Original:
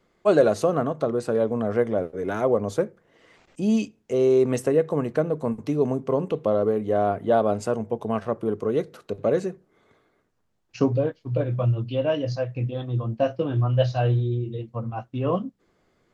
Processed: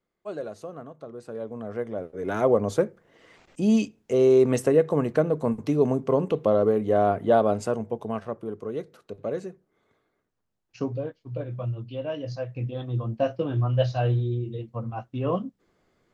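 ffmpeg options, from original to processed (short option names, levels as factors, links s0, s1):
-af "volume=2.24,afade=t=in:st=1.05:d=1.03:silence=0.334965,afade=t=in:st=2.08:d=0.34:silence=0.398107,afade=t=out:st=7.25:d=1.22:silence=0.354813,afade=t=in:st=12.1:d=0.79:silence=0.501187"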